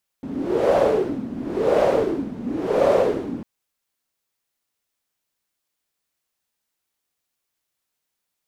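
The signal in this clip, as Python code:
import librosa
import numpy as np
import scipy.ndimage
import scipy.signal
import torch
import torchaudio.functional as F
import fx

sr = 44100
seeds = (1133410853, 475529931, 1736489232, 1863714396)

y = fx.wind(sr, seeds[0], length_s=3.2, low_hz=240.0, high_hz=560.0, q=5.4, gusts=3, swing_db=14.0)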